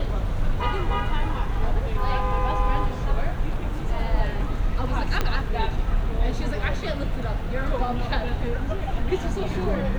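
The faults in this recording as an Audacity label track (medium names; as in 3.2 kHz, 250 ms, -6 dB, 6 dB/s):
5.210000	5.210000	pop -9 dBFS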